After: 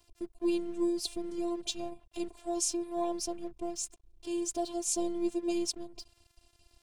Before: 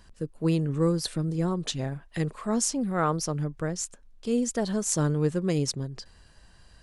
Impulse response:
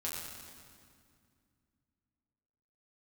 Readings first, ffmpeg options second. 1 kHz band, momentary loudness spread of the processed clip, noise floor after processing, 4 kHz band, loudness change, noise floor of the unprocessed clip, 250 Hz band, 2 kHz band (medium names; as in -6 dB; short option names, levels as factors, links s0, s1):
-6.5 dB, 10 LU, -70 dBFS, -3.5 dB, -6.0 dB, -56 dBFS, -5.5 dB, -13.0 dB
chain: -af "afftfilt=real='re*(1-between(b*sr/4096,1000,2200))':imag='im*(1-between(b*sr/4096,1000,2200))':win_size=4096:overlap=0.75,afftfilt=real='hypot(re,im)*cos(PI*b)':imag='0':win_size=512:overlap=0.75,aeval=exprs='sgn(val(0))*max(abs(val(0))-0.00168,0)':c=same"